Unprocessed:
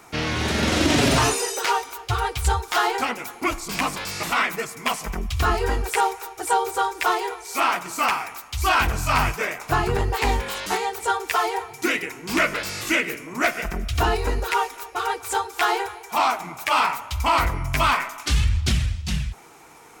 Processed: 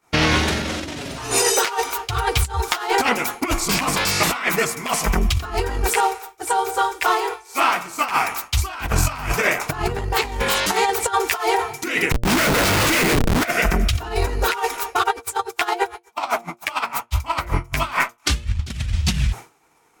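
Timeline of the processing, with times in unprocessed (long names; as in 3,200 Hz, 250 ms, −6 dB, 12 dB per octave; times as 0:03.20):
0:05.93–0:08.04: tuned comb filter 110 Hz, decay 1.1 s
0:12.11–0:13.45: comparator with hysteresis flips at −30.5 dBFS
0:15.02–0:18.70: tremolo with a sine in dB 11 Hz → 3.2 Hz, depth 26 dB
whole clip: hum removal 116.7 Hz, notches 6; downward expander −34 dBFS; compressor whose output falls as the input rises −26 dBFS, ratio −0.5; level +7 dB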